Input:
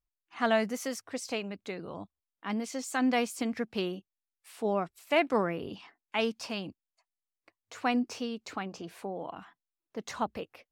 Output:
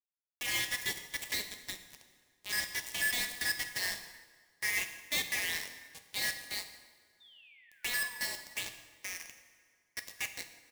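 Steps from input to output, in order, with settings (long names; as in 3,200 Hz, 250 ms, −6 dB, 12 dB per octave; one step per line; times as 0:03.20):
band-splitting scrambler in four parts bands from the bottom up 4123
high-pass filter 350 Hz 24 dB per octave
high-shelf EQ 6,500 Hz +6 dB
notch filter 2,500 Hz, Q 16
on a send: repeating echo 785 ms, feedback 35%, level −16 dB
on the sum: brickwall limiter −22 dBFS, peak gain reduction 10 dB
bit reduction 5 bits
sound drawn into the spectrogram fall, 0:07.20–0:08.17, 890–3,700 Hz −49 dBFS
parametric band 1,400 Hz −13 dB 0.5 octaves
dense smooth reverb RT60 2 s, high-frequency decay 0.75×, pre-delay 0 ms, DRR 2.5 dB
expander for the loud parts 1.5 to 1, over −50 dBFS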